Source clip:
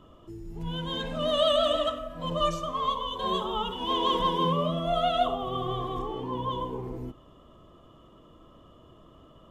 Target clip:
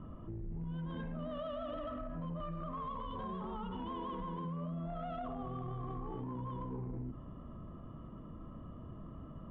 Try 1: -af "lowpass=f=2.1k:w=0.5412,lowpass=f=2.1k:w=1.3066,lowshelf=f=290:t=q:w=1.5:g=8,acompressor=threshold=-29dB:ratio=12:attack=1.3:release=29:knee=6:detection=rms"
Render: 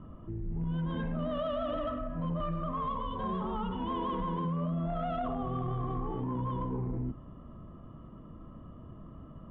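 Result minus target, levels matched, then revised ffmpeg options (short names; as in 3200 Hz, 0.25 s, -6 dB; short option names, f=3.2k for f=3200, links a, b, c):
compressor: peak gain reduction -8 dB
-af "lowpass=f=2.1k:w=0.5412,lowpass=f=2.1k:w=1.3066,lowshelf=f=290:t=q:w=1.5:g=8,acompressor=threshold=-37.5dB:ratio=12:attack=1.3:release=29:knee=6:detection=rms"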